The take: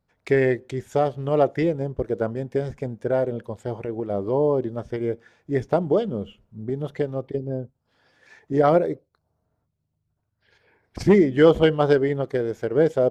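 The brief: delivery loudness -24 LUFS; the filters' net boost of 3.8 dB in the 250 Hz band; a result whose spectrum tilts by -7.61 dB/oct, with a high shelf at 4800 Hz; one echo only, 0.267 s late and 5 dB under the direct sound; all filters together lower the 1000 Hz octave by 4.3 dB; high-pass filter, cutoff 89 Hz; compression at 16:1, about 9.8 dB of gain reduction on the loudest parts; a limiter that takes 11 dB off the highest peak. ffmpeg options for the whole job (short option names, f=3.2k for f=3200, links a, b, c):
-af "highpass=89,equalizer=f=250:t=o:g=6,equalizer=f=1k:t=o:g=-7.5,highshelf=f=4.8k:g=-5,acompressor=threshold=-18dB:ratio=16,alimiter=limit=-19dB:level=0:latency=1,aecho=1:1:267:0.562,volume=5dB"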